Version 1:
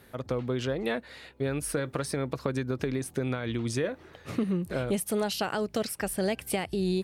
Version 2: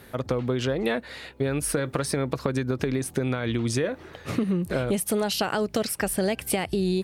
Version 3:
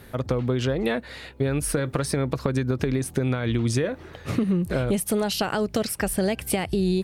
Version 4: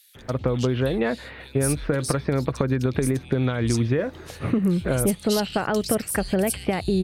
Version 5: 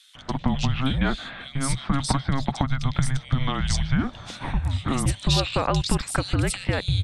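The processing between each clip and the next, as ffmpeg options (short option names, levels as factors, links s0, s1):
-af "acompressor=threshold=0.0355:ratio=3,volume=2.24"
-af "lowshelf=f=130:g=8"
-filter_complex "[0:a]acrossover=split=3000[s0][s1];[s0]adelay=150[s2];[s2][s1]amix=inputs=2:normalize=0,volume=1.19"
-af "highpass=f=150:w=0.5412,highpass=f=150:w=1.3066,equalizer=f=190:t=q:w=4:g=-7,equalizer=f=660:t=q:w=4:g=-7,equalizer=f=1000:t=q:w=4:g=6,equalizer=f=3800:t=q:w=4:g=7,lowpass=f=8600:w=0.5412,lowpass=f=8600:w=1.3066,afreqshift=-270,volume=1.33"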